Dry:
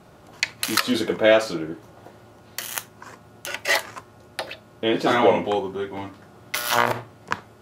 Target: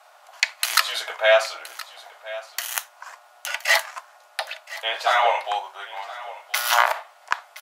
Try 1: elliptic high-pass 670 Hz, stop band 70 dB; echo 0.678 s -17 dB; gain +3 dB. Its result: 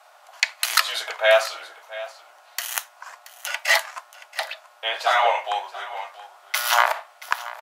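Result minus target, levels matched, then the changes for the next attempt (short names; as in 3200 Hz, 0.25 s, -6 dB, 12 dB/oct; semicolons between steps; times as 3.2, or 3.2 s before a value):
echo 0.342 s early
change: echo 1.02 s -17 dB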